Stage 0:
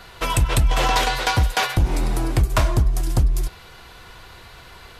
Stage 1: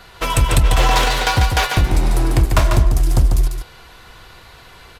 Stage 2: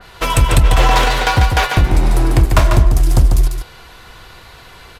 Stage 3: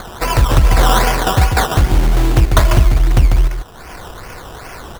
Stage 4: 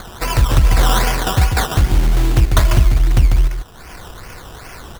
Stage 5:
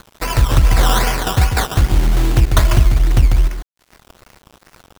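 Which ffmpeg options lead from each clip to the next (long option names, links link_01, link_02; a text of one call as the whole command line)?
ffmpeg -i in.wav -filter_complex "[0:a]asplit=2[link_01][link_02];[link_02]acrusher=bits=3:mix=0:aa=0.5,volume=-9dB[link_03];[link_01][link_03]amix=inputs=2:normalize=0,aecho=1:1:145:0.531" out.wav
ffmpeg -i in.wav -af "adynamicequalizer=threshold=0.02:dfrequency=3100:dqfactor=0.7:tfrequency=3100:tqfactor=0.7:attack=5:release=100:ratio=0.375:range=2.5:mode=cutabove:tftype=highshelf,volume=3dB" out.wav
ffmpeg -i in.wav -af "acompressor=mode=upward:threshold=-22dB:ratio=2.5,acrusher=samples=16:mix=1:aa=0.000001:lfo=1:lforange=9.6:lforate=2.5" out.wav
ffmpeg -i in.wav -af "equalizer=frequency=660:width_type=o:width=2.5:gain=-4.5,volume=-1dB" out.wav
ffmpeg -i in.wav -af "aeval=exprs='sgn(val(0))*max(abs(val(0))-0.0316,0)':channel_layout=same,volume=1dB" out.wav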